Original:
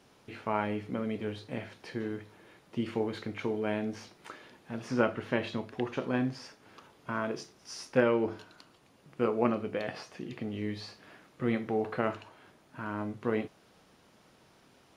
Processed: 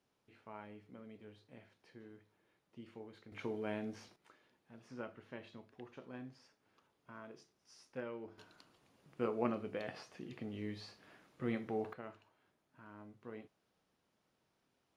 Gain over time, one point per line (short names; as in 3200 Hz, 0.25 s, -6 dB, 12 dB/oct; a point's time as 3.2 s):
-20 dB
from 3.32 s -8.5 dB
from 4.16 s -19 dB
from 8.38 s -8 dB
from 11.93 s -19 dB